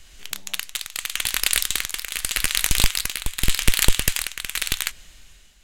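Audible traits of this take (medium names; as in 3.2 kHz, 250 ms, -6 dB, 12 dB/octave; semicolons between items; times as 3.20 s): tremolo triangle 0.85 Hz, depth 70%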